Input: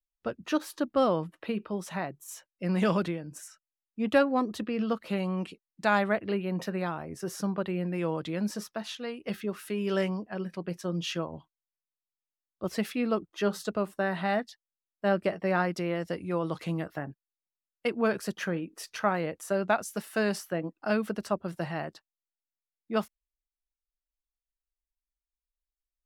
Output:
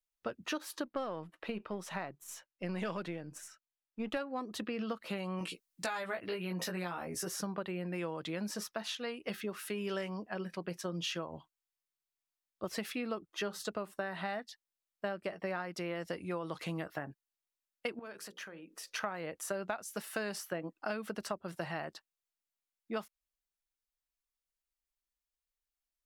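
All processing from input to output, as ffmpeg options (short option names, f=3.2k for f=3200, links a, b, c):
-filter_complex "[0:a]asettb=1/sr,asplit=3[a][b][c];[a]atrim=end=0.854[d];[b]atrim=start=0.85:end=4.17,asetpts=PTS-STARTPTS,afade=t=in:d=0.004:c=qsin,afade=t=out:st=3.316:d=0.004:c=qsin,aeval=exprs='if(lt(val(0),0),0.708*val(0),val(0))':c=same,highshelf=f=5.2k:g=-6[e];[c]atrim=start=4.166[f];[d][e]acrossfade=d=0.004:c1=hsin:c2=qsin[g];[g][f]acrossfade=d=0.004:c1=qsin:c2=hsin,asettb=1/sr,asplit=3[h][i][j];[h]atrim=end=5.394[k];[i]atrim=start=5.39:end=7.28,asetpts=PTS-STARTPTS,afade=t=in:d=0.004:c=qsin,afade=t=out:st=1.886:d=0.004:c=qsin,highshelf=f=4.3k:g=8.5,acompressor=threshold=-34dB:ratio=1.5:attack=3.2:release=140:knee=1:detection=peak,asplit=2[l][m];[m]adelay=17,volume=-2.5dB[n];[l][n]amix=inputs=2:normalize=0,atrim=end_sample=83349[o];[j]atrim=start=7.276[p];[k][o]acrossfade=d=0.004:c1=hsin:c2=qsin[q];[q][p]acrossfade=d=0.004:c1=qsin:c2=hsin,asettb=1/sr,asplit=3[r][s][t];[r]atrim=end=17.994[u];[s]atrim=start=17.99:end=18.93,asetpts=PTS-STARTPTS,afade=t=in:d=0.004:c=qsin,afade=t=out:st=0.936:d=0.004:c=qsin,equalizer=f=95:t=o:w=1.8:g=-8.5,acompressor=threshold=-45dB:ratio=4:attack=3.2:release=140:knee=1:detection=peak,bandreject=f=60:t=h:w=6,bandreject=f=120:t=h:w=6,bandreject=f=180:t=h:w=6,bandreject=f=240:t=h:w=6,bandreject=f=300:t=h:w=6,bandreject=f=360:t=h:w=6,bandreject=f=420:t=h:w=6,bandreject=f=480:t=h:w=6,bandreject=f=540:t=h:w=6[v];[t]atrim=start=18.926[w];[u][v]acrossfade=d=0.004:c1=hsin:c2=qsin[x];[x][w]acrossfade=d=0.004:c1=qsin:c2=hsin,lowshelf=f=440:g=-7.5,acompressor=threshold=-35dB:ratio=10,volume=1.5dB"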